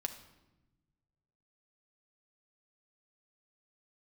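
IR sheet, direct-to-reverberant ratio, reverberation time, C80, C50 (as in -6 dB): 5.5 dB, 1.0 s, 13.0 dB, 10.5 dB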